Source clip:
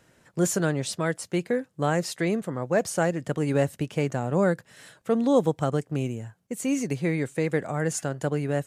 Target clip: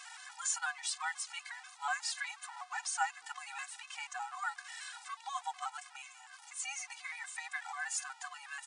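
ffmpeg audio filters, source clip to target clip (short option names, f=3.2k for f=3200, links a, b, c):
-filter_complex "[0:a]aeval=exprs='val(0)+0.5*0.0141*sgn(val(0))':c=same,afftfilt=real='re*between(b*sr/4096,750,10000)':imag='im*between(b*sr/4096,750,10000)':win_size=4096:overlap=0.75,afreqshift=-22,asplit=2[a][b];[b]adelay=210,highpass=300,lowpass=3.4k,asoftclip=type=hard:threshold=-24dB,volume=-29dB[c];[a][c]amix=inputs=2:normalize=0,afftfilt=real='re*gt(sin(2*PI*4.1*pts/sr)*(1-2*mod(floor(b*sr/1024/250),2)),0)':imag='im*gt(sin(2*PI*4.1*pts/sr)*(1-2*mod(floor(b*sr/1024/250),2)),0)':win_size=1024:overlap=0.75,volume=-2dB"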